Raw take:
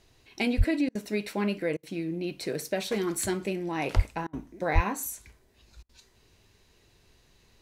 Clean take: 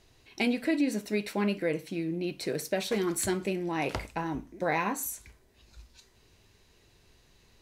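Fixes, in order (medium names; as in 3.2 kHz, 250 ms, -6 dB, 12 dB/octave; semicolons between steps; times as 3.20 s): 0.57–0.69 s: high-pass 140 Hz 24 dB/octave; 3.95–4.07 s: high-pass 140 Hz 24 dB/octave; 4.74–4.86 s: high-pass 140 Hz 24 dB/octave; interpolate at 0.89/1.77/4.27/5.83 s, 60 ms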